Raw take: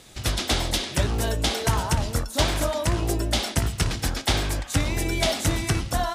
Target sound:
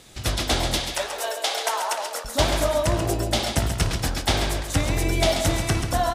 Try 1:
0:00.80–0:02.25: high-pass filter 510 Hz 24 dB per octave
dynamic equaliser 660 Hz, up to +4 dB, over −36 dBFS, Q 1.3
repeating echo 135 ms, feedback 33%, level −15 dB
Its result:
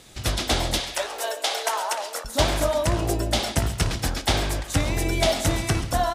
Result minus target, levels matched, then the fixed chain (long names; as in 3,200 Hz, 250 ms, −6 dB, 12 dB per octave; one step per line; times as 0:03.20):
echo-to-direct −7.5 dB
0:00.80–0:02.25: high-pass filter 510 Hz 24 dB per octave
dynamic equaliser 660 Hz, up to +4 dB, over −36 dBFS, Q 1.3
repeating echo 135 ms, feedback 33%, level −7.5 dB